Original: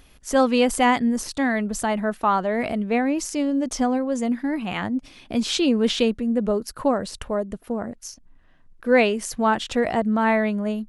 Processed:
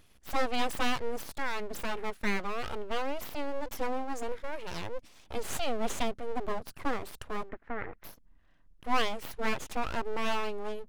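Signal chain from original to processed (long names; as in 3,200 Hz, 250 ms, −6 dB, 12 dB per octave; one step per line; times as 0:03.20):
full-wave rectification
0:07.49–0:08.04: low-pass with resonance 1,900 Hz, resonance Q 3.5
level −8 dB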